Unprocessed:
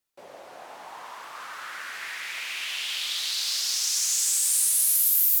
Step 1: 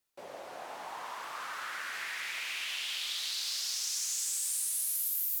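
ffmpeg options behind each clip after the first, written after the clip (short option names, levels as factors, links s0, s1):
-af "acompressor=threshold=0.0158:ratio=2.5"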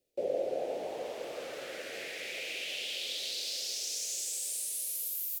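-af "firequalizer=gain_entry='entry(190,0);entry(510,12);entry(1000,-24);entry(2400,-8);entry(10000,-11)':delay=0.05:min_phase=1,volume=2.37"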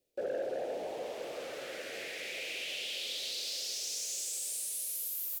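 -af "asoftclip=type=tanh:threshold=0.0355"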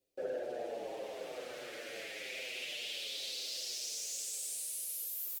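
-filter_complex "[0:a]asplit=2[s0][s1];[s1]adelay=7.2,afreqshift=-0.91[s2];[s0][s2]amix=inputs=2:normalize=1"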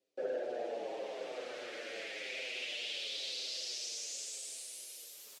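-af "highpass=210,lowpass=6300,volume=1.19"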